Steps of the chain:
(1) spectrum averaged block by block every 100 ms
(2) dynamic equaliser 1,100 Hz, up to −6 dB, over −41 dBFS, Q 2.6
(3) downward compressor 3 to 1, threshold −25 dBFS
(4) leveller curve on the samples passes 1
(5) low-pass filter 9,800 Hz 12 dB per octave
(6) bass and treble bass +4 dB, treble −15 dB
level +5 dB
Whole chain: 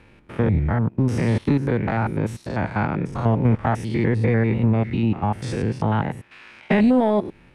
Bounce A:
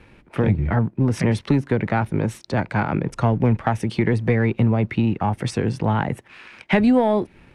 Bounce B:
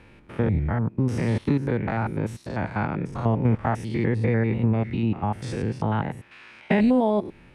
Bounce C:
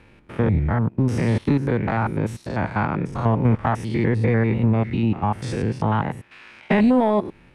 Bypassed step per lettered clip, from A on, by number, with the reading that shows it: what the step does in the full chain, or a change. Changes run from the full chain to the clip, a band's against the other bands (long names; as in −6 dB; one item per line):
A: 1, 4 kHz band +2.5 dB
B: 4, change in crest factor +2.5 dB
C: 2, 1 kHz band +1.5 dB